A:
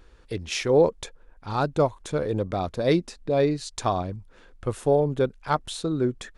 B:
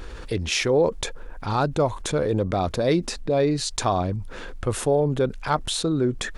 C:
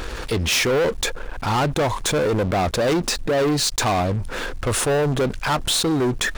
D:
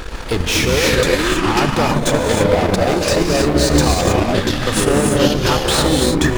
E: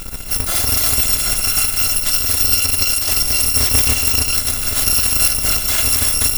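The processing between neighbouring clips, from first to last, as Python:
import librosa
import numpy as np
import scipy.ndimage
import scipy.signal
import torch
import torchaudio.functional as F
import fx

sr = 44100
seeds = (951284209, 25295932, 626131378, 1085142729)

y1 = fx.env_flatten(x, sr, amount_pct=50)
y1 = y1 * 10.0 ** (-2.0 / 20.0)
y2 = fx.low_shelf(y1, sr, hz=350.0, db=-5.5)
y2 = fx.leveller(y2, sr, passes=5)
y2 = y2 * 10.0 ** (-7.0 / 20.0)
y3 = fx.echo_pitch(y2, sr, ms=115, semitones=-6, count=2, db_per_echo=-3.0)
y3 = fx.rev_gated(y3, sr, seeds[0], gate_ms=340, shape='rising', drr_db=-0.5)
y3 = fx.transient(y3, sr, attack_db=6, sustain_db=-7)
y4 = fx.bit_reversed(y3, sr, seeds[1], block=256)
y4 = y4 + 10.0 ** (-16.0 / 20.0) * np.pad(y4, (int(1112 * sr / 1000.0), 0))[:len(y4)]
y4 = y4 * 10.0 ** (-1.0 / 20.0)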